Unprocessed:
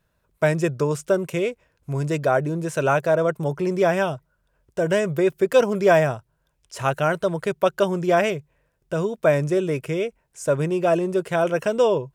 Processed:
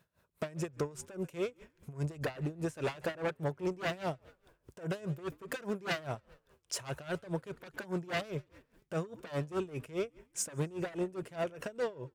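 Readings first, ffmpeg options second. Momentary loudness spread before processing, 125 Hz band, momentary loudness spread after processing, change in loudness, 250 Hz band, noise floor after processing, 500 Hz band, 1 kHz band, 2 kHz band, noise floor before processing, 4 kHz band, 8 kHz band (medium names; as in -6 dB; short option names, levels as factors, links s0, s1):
9 LU, -13.0 dB, 6 LU, -16.0 dB, -14.0 dB, -76 dBFS, -18.0 dB, -17.5 dB, -14.5 dB, -70 dBFS, -9.0 dB, -5.0 dB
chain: -filter_complex "[0:a]dynaudnorm=f=260:g=9:m=2.51,aeval=exprs='0.237*(abs(mod(val(0)/0.237+3,4)-2)-1)':c=same,acompressor=threshold=0.0251:ratio=4,asoftclip=type=tanh:threshold=0.0422,highpass=78,asplit=5[s0][s1][s2][s3][s4];[s1]adelay=137,afreqshift=-60,volume=0.0708[s5];[s2]adelay=274,afreqshift=-120,volume=0.0403[s6];[s3]adelay=411,afreqshift=-180,volume=0.0229[s7];[s4]adelay=548,afreqshift=-240,volume=0.0132[s8];[s0][s5][s6][s7][s8]amix=inputs=5:normalize=0,aeval=exprs='val(0)*pow(10,-20*(0.5-0.5*cos(2*PI*4.9*n/s))/20)':c=same,volume=1.33"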